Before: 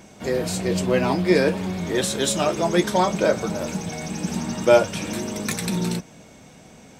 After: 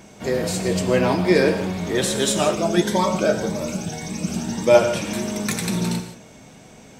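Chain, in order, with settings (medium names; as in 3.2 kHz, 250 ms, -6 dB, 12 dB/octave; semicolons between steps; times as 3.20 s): gated-style reverb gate 200 ms flat, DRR 7 dB; 2.55–4.75 s: Shepard-style phaser rising 1.8 Hz; trim +1 dB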